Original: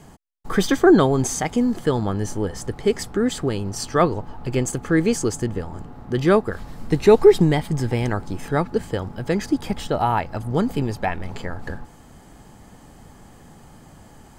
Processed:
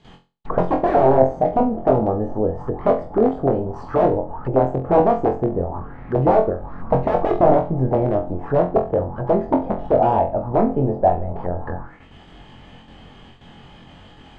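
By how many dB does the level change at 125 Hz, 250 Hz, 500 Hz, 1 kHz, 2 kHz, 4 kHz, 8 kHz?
0.0 dB, -1.0 dB, +3.0 dB, +6.0 dB, -8.5 dB, under -10 dB, under -30 dB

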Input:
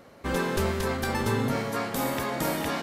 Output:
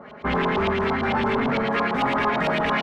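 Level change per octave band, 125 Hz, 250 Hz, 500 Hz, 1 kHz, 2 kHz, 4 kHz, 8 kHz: 0.0 dB, +4.5 dB, +5.0 dB, +8.5 dB, +7.5 dB, +4.0 dB, under -15 dB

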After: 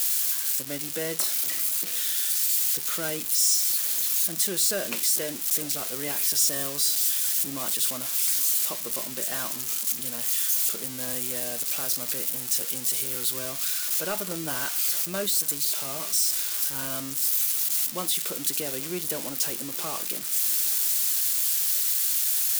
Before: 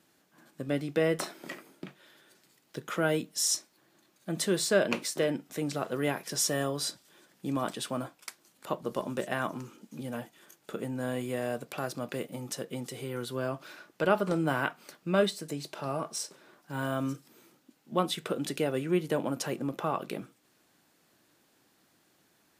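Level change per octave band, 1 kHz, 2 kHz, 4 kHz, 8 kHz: -4.0 dB, 0.0 dB, +9.0 dB, +14.0 dB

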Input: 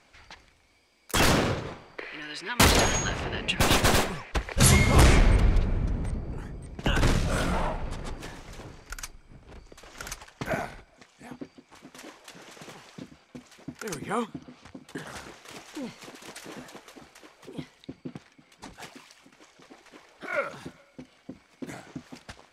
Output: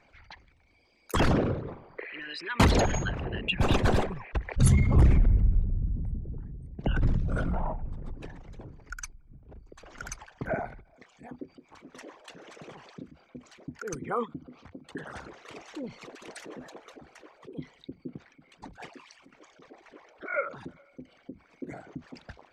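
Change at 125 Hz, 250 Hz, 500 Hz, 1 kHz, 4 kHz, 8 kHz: 0.0 dB, -1.5 dB, -2.5 dB, -4.5 dB, -9.0 dB, -11.0 dB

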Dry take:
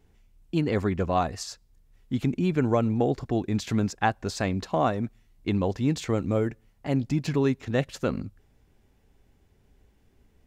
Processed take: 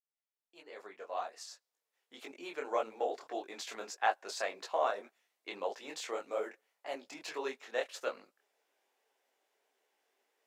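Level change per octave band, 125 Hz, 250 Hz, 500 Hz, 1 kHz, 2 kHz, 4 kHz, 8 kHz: under -40 dB, -26.0 dB, -9.0 dB, -6.5 dB, -5.5 dB, -6.0 dB, -6.5 dB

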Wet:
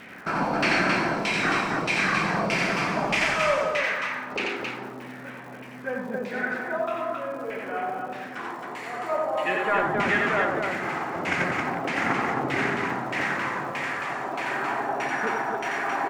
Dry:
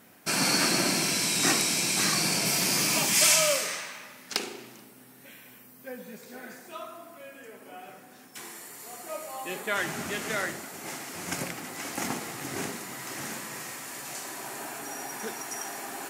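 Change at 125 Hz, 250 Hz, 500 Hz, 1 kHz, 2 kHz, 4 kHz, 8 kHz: +4.5 dB, +5.0 dB, +8.0 dB, +10.0 dB, +7.5 dB, -5.5 dB, -16.5 dB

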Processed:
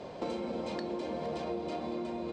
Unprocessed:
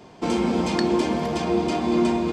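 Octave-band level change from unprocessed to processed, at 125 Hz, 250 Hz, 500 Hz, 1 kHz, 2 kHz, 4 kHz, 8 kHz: -16.0 dB, -16.0 dB, -11.5 dB, -13.0 dB, -15.5 dB, -15.0 dB, -20.0 dB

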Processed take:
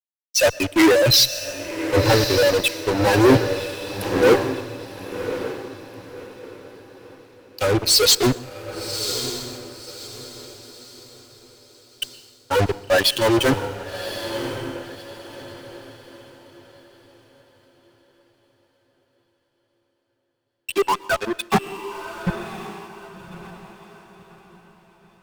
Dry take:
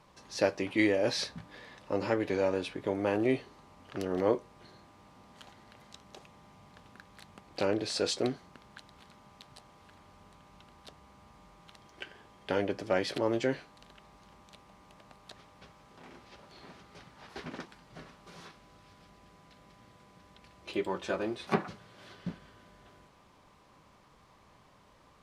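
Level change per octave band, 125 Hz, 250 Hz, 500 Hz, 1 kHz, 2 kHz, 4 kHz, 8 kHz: +16.5 dB, +11.5 dB, +12.0 dB, +14.0 dB, +14.0 dB, +19.5 dB, +21.0 dB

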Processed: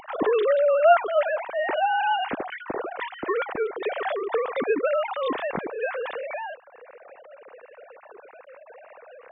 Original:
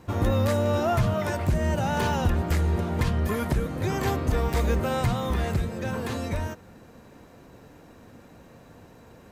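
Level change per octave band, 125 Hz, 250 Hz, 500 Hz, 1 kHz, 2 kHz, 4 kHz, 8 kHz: -27.0 dB, -7.5 dB, +6.0 dB, +5.0 dB, +4.5 dB, -0.5 dB, under -40 dB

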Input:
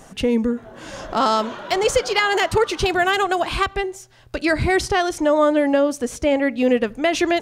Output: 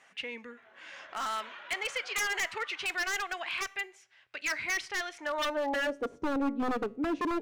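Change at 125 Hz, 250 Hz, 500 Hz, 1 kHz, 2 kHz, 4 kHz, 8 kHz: under -25 dB, -14.5 dB, -18.0 dB, -14.0 dB, -9.0 dB, -11.0 dB, -9.0 dB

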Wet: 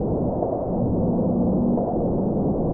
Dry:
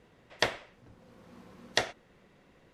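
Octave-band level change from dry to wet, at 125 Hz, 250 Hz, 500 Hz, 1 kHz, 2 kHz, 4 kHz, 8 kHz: +27.5 dB, +29.5 dB, +17.5 dB, +10.5 dB, under -25 dB, under -40 dB, under -35 dB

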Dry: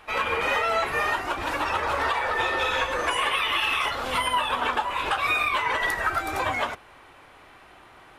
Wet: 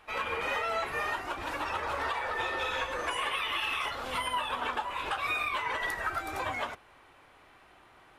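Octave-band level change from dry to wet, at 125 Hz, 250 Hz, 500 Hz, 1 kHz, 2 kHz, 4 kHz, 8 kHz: -7.5 dB, -7.5 dB, -7.5 dB, -7.5 dB, -7.5 dB, -7.5 dB, -7.5 dB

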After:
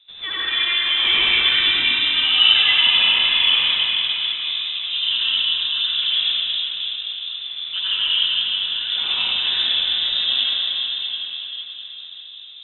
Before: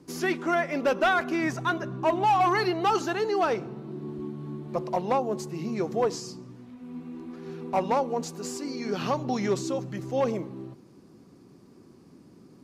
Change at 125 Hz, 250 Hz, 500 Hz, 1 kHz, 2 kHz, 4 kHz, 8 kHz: under -10 dB, under -15 dB, under -15 dB, -8.5 dB, +11.5 dB, +29.0 dB, under -40 dB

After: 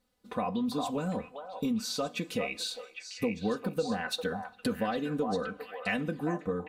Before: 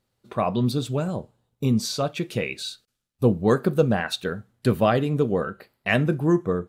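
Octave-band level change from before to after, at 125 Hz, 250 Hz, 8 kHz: -15.5 dB, -8.0 dB, -5.0 dB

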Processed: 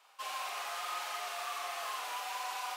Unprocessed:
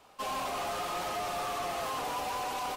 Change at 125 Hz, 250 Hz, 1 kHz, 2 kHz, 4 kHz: under -35 dB, under -20 dB, -5.0 dB, -1.0 dB, -1.0 dB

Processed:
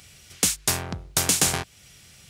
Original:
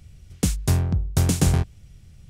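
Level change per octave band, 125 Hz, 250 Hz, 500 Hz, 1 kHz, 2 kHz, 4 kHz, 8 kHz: -13.5 dB, -8.0 dB, -1.5 dB, +3.5 dB, +7.0 dB, +8.5 dB, +8.5 dB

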